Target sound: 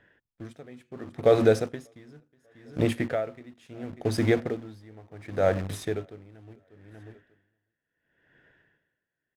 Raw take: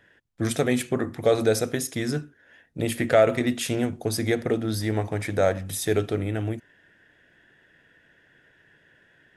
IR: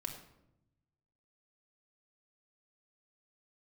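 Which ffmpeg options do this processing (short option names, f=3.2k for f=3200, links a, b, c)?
-filter_complex "[0:a]asplit=2[a][b];[b]acrusher=bits=4:mix=0:aa=0.000001,volume=-5dB[c];[a][c]amix=inputs=2:normalize=0,aemphasis=mode=reproduction:type=75kf,aecho=1:1:592|1184:0.0794|0.0199,aeval=exprs='val(0)*pow(10,-26*(0.5-0.5*cos(2*PI*0.71*n/s))/20)':c=same,volume=-1dB"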